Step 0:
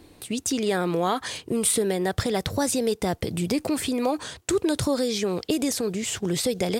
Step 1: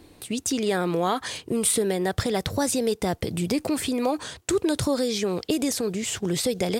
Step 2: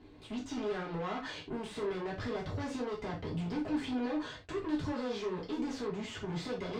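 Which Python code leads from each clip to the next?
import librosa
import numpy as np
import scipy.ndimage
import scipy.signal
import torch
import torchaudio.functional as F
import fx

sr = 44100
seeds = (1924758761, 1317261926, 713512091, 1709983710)

y1 = x
y2 = fx.tube_stage(y1, sr, drive_db=31.0, bias=0.4)
y2 = fx.air_absorb(y2, sr, metres=180.0)
y2 = fx.rev_gated(y2, sr, seeds[0], gate_ms=110, shape='falling', drr_db=-5.0)
y2 = F.gain(torch.from_numpy(y2), -8.5).numpy()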